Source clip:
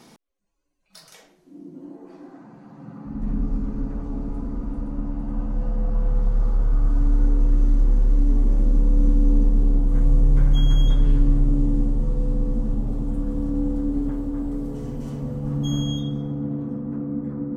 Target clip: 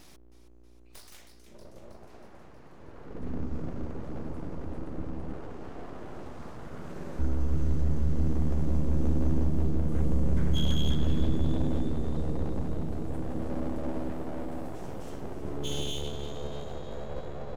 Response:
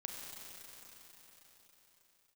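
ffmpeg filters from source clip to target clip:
-filter_complex "[0:a]asettb=1/sr,asplit=3[a][b][c];[a]atrim=end=5.334[d];[b]atrim=start=5.33:end=7.19,asetpts=PTS-STARTPTS,afade=t=in:d=0.004:c=qsin,afade=t=out:st=1.856:d=0.004:c=qsin,highpass=f=66:w=0.5412,highpass=f=66:w=1.3066[e];[c]atrim=start=7.186[f];[d][e]acrossfade=d=0.004:c1=hsin:c2=qsin[g];[g][f]acrossfade=d=0.004:c1=qsin:c2=hsin,acrossover=split=3100[h][i];[h]crystalizer=i=4.5:c=0[j];[j][i]amix=inputs=2:normalize=0,highshelf=f=4.3k:g=7.5,asplit=2[k][l];[l]asplit=7[m][n][o][p][q][r][s];[m]adelay=318,afreqshift=77,volume=-12dB[t];[n]adelay=636,afreqshift=154,volume=-16.4dB[u];[o]adelay=954,afreqshift=231,volume=-20.9dB[v];[p]adelay=1272,afreqshift=308,volume=-25.3dB[w];[q]adelay=1590,afreqshift=385,volume=-29.7dB[x];[r]adelay=1908,afreqshift=462,volume=-34.2dB[y];[s]adelay=2226,afreqshift=539,volume=-38.6dB[z];[t][u][v][w][x][y][z]amix=inputs=7:normalize=0[aa];[k][aa]amix=inputs=2:normalize=0,aeval=exprs='val(0)+0.00631*(sin(2*PI*60*n/s)+sin(2*PI*2*60*n/s)/2+sin(2*PI*3*60*n/s)/3+sin(2*PI*4*60*n/s)/4+sin(2*PI*5*60*n/s)/5)':c=same,aeval=exprs='abs(val(0))':c=same,volume=-7dB"

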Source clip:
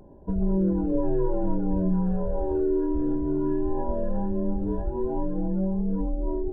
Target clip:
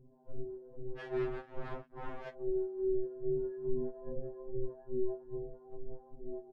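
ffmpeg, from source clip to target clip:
-filter_complex "[0:a]lowpass=1.1k,asplit=2[a][b];[b]aecho=0:1:32.07|288.6:0.562|0.562[c];[a][c]amix=inputs=2:normalize=0,acompressor=threshold=-27dB:ratio=16,acrossover=split=450[d][e];[d]aeval=exprs='val(0)*(1-1/2+1/2*cos(2*PI*2.4*n/s))':c=same[f];[e]aeval=exprs='val(0)*(1-1/2-1/2*cos(2*PI*2.4*n/s))':c=same[g];[f][g]amix=inputs=2:normalize=0,asplit=3[h][i][j];[h]afade=t=out:st=0.97:d=0.02[k];[i]acrusher=bits=5:mix=0:aa=0.5,afade=t=in:st=0.97:d=0.02,afade=t=out:st=2.32:d=0.02[l];[j]afade=t=in:st=2.32:d=0.02[m];[k][l][m]amix=inputs=3:normalize=0,agate=range=-7dB:threshold=-37dB:ratio=16:detection=peak,aeval=exprs='val(0)+0.00112*(sin(2*PI*50*n/s)+sin(2*PI*2*50*n/s)/2+sin(2*PI*3*50*n/s)/3+sin(2*PI*4*50*n/s)/4+sin(2*PI*5*50*n/s)/5)':c=same,afftfilt=real='re*2.45*eq(mod(b,6),0)':imag='im*2.45*eq(mod(b,6),0)':win_size=2048:overlap=0.75,volume=1.5dB"

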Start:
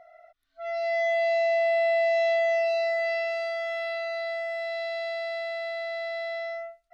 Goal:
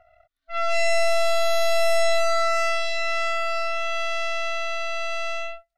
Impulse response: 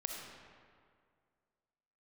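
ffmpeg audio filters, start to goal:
-af "aeval=exprs='0.126*(cos(1*acos(clip(val(0)/0.126,-1,1)))-cos(1*PI/2))+0.0631*(cos(4*acos(clip(val(0)/0.126,-1,1)))-cos(4*PI/2))+0.0158*(cos(5*acos(clip(val(0)/0.126,-1,1)))-cos(5*PI/2))+0.02*(cos(7*acos(clip(val(0)/0.126,-1,1)))-cos(7*PI/2))+0.0224*(cos(8*acos(clip(val(0)/0.126,-1,1)))-cos(8*PI/2))':c=same,atempo=1.2"

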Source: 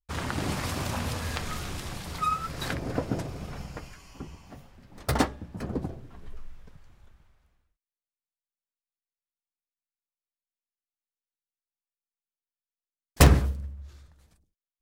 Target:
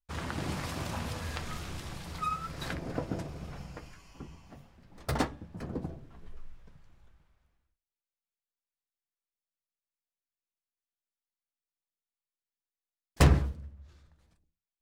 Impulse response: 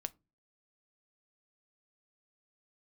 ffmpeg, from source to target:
-filter_complex "[0:a]asetnsamples=n=441:p=0,asendcmd='13.21 highshelf g -12',highshelf=f=8.4k:g=-4.5[a];[1:a]atrim=start_sample=2205[b];[a][b]afir=irnorm=-1:irlink=0,volume=-3dB"

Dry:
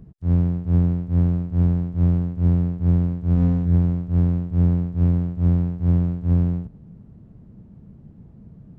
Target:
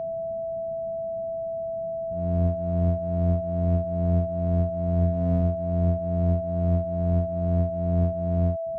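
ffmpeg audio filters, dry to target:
-af "areverse,aeval=exprs='val(0)+0.0794*sin(2*PI*660*n/s)':c=same,volume=-5.5dB"

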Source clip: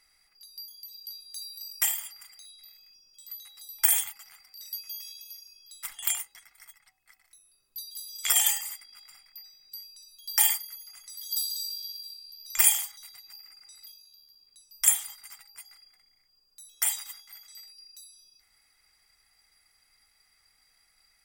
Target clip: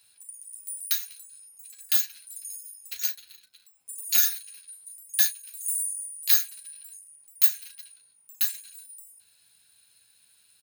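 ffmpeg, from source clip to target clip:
-af "highpass=f=49:w=0.5412,highpass=f=49:w=1.3066,lowshelf=f=220:g=-6.5,aecho=1:1:22|74:0.531|0.237,asetrate=88200,aresample=44100,volume=4.5dB"

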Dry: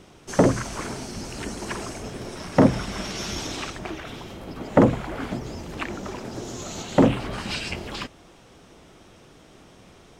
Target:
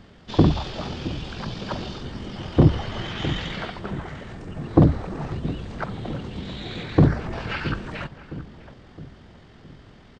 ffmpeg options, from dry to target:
-filter_complex "[0:a]asplit=2[a][b];[b]adelay=666,lowpass=f=1.6k:p=1,volume=-13dB,asplit=2[c][d];[d]adelay=666,lowpass=f=1.6k:p=1,volume=0.51,asplit=2[e][f];[f]adelay=666,lowpass=f=1.6k:p=1,volume=0.51,asplit=2[g][h];[h]adelay=666,lowpass=f=1.6k:p=1,volume=0.51,asplit=2[i][j];[j]adelay=666,lowpass=f=1.6k:p=1,volume=0.51[k];[a][c][e][g][i][k]amix=inputs=6:normalize=0,asetrate=24750,aresample=44100,atempo=1.7818,volume=1.5dB"

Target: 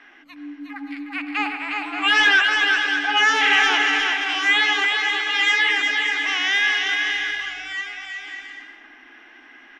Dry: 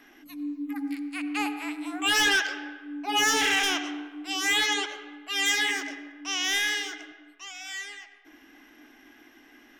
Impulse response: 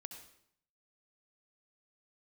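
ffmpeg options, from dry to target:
-filter_complex "[0:a]lowpass=2.1k,tiltshelf=f=790:g=-9,bandreject=f=60:t=h:w=6,bandreject=f=120:t=h:w=6,bandreject=f=180:t=h:w=6,bandreject=f=240:t=h:w=6,bandreject=f=300:t=h:w=6,asettb=1/sr,asplit=3[a][b][c];[a]atrim=end=4.914[d];[b]atrim=start=4.91:end=5.78,asetpts=PTS-STARTPTS,afade=t=in:d=0.004:c=qsin,afade=t=out:st=0.866:d=0.004:c=qsin,afreqshift=24[e];[c]atrim=start=5.776[f];[d][e]acrossfade=d=0.004:c1=hsin:c2=qsin[g];[g][f]acrossfade=d=0.004:c1=qsin:c2=hsin,asettb=1/sr,asplit=3[h][i][j];[h]atrim=end=6.764[k];[i]atrim=start=6.76:end=7.74,asetpts=PTS-STARTPTS,afade=t=in:d=0.004:c=qsin,afade=t=out:st=0.976:d=0.004:c=qsin,aeval=exprs='val(0)+0.000398*(sin(2*PI*50*n/s)+sin(2*PI*2*50*n/s)/2+sin(2*PI*3*50*n/s)/3+sin(2*PI*4*50*n/s)/4+sin(2*PI*5*50*n/s)/5)':c=same[l];[j]atrim=start=7.736[m];[k][l]acrossfade=d=0.004:c1=hsin:c2=qsin[n];[n][m]acrossfade=d=0.004:c1=qsin:c2=hsin,aecho=1:1:360|576|705.6|783.4|830:0.631|0.398|0.251|0.158|0.1,volume=5dB" -ar 32000 -c:a libmp3lame -b:a 64k

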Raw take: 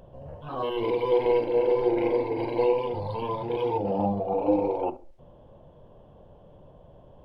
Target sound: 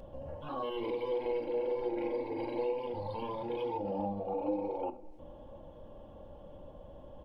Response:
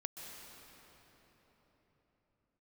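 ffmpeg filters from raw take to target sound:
-filter_complex "[0:a]aecho=1:1:3.6:0.51,acompressor=threshold=-41dB:ratio=2,asplit=2[a][b];[1:a]atrim=start_sample=2205,adelay=31[c];[b][c]afir=irnorm=-1:irlink=0,volume=-18dB[d];[a][d]amix=inputs=2:normalize=0"

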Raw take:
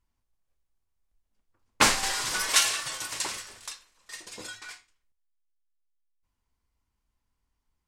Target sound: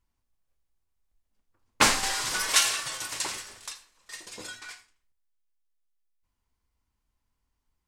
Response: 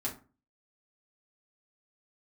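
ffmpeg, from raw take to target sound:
-filter_complex "[0:a]asplit=2[a][b];[1:a]atrim=start_sample=2205,highshelf=f=8.1k:g=8.5,adelay=77[c];[b][c]afir=irnorm=-1:irlink=0,volume=-20dB[d];[a][d]amix=inputs=2:normalize=0"

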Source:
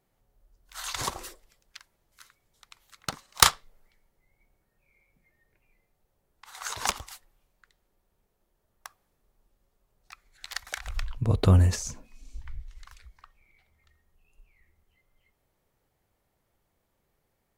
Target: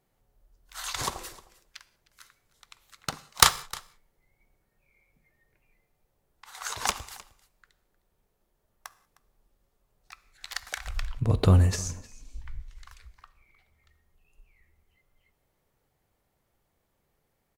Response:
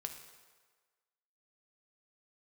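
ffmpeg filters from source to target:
-filter_complex "[0:a]aecho=1:1:308:0.0891,asplit=2[a][b];[1:a]atrim=start_sample=2205,afade=t=out:st=0.24:d=0.01,atrim=end_sample=11025[c];[b][c]afir=irnorm=-1:irlink=0,volume=-3.5dB[d];[a][d]amix=inputs=2:normalize=0,volume=-3dB"

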